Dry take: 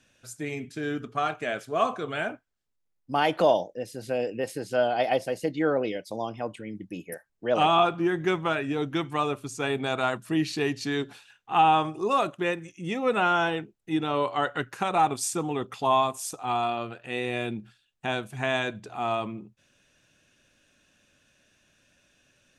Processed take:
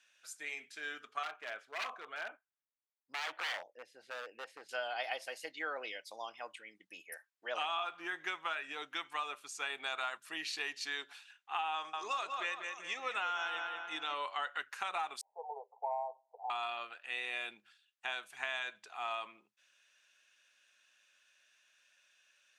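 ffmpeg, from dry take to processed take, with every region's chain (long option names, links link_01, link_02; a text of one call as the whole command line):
ffmpeg -i in.wav -filter_complex "[0:a]asettb=1/sr,asplit=3[link_01][link_02][link_03];[link_01]atrim=end=1.234[link_04];[link_02]atrim=start=1.23:end=4.69,asetpts=PTS-STARTPTS,afade=type=in:duration=0.004:curve=qsin,afade=type=out:start_time=3.456:duration=0.004:curve=qsin,lowpass=frequency=1000:poles=1,aeval=exprs='0.0531*(abs(mod(val(0)/0.0531+3,4)-2)-1)':channel_layout=same[link_05];[link_03]atrim=start=4.686[link_06];[link_04][link_05]acrossfade=duration=0.004:curve1=hsin:curve2=qsin[link_07];[link_07][link_06]acrossfade=duration=0.004:curve1=qsin:curve2=hsin,asettb=1/sr,asplit=3[link_08][link_09][link_10];[link_08]atrim=end=11.744[link_11];[link_09]atrim=start=11.74:end=14.14,asetpts=PTS-STARTPTS,afade=type=in:duration=0.004:curve=qsin,afade=type=out:start_time=2.396:duration=0.004:curve=qsin,lowpass=frequency=6600:width_type=q:width=2,asplit=2[link_12][link_13];[link_13]adelay=192,lowpass=frequency=3400:poles=1,volume=-7dB,asplit=2[link_14][link_15];[link_15]adelay=192,lowpass=frequency=3400:poles=1,volume=0.5,asplit=2[link_16][link_17];[link_17]adelay=192,lowpass=frequency=3400:poles=1,volume=0.5,asplit=2[link_18][link_19];[link_19]adelay=192,lowpass=frequency=3400:poles=1,volume=0.5,asplit=2[link_20][link_21];[link_21]adelay=192,lowpass=frequency=3400:poles=1,volume=0.5,asplit=2[link_22][link_23];[link_23]adelay=192,lowpass=frequency=3400:poles=1,volume=0.5[link_24];[link_12][link_14][link_16][link_18][link_20][link_22][link_24]amix=inputs=7:normalize=0,atrim=end_sample=105840[link_25];[link_10]atrim=start=14.136[link_26];[link_11][link_25]acrossfade=duration=0.004:curve1=hsin:curve2=qsin[link_27];[link_27][link_26]acrossfade=duration=0.004:curve1=qsin:curve2=hsin,asettb=1/sr,asplit=3[link_28][link_29][link_30];[link_28]atrim=end=15.214[link_31];[link_29]atrim=start=15.21:end=16.5,asetpts=PTS-STARTPTS,afade=type=in:duration=0.004:curve=qsin,afade=type=out:start_time=1.286:duration=0.004:curve=qsin,asuperpass=centerf=630:order=20:qfactor=1.2,acontrast=21[link_32];[link_30]atrim=start=16.496[link_33];[link_31][link_32]acrossfade=duration=0.004:curve1=hsin:curve2=qsin[link_34];[link_34][link_33]acrossfade=duration=0.004:curve1=qsin:curve2=hsin,highpass=1300,highshelf=frequency=6600:gain=-7.5,acompressor=threshold=-32dB:ratio=6,volume=-1.5dB" out.wav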